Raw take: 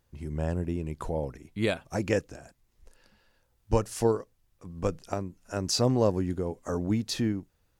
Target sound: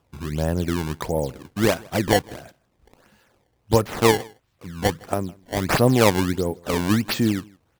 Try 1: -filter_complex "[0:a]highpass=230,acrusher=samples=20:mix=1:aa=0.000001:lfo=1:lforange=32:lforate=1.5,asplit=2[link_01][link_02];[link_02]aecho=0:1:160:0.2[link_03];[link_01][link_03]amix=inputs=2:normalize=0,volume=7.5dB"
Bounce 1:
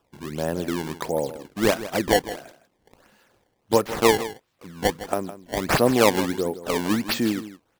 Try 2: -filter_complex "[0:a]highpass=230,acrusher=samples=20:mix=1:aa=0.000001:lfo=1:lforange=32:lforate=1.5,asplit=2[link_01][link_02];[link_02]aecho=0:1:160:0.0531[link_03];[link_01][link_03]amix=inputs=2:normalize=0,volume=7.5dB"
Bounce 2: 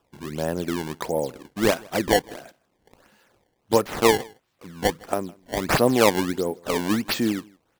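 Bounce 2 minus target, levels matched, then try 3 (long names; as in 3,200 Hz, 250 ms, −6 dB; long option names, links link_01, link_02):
125 Hz band −7.0 dB
-filter_complex "[0:a]highpass=81,acrusher=samples=20:mix=1:aa=0.000001:lfo=1:lforange=32:lforate=1.5,asplit=2[link_01][link_02];[link_02]aecho=0:1:160:0.0531[link_03];[link_01][link_03]amix=inputs=2:normalize=0,volume=7.5dB"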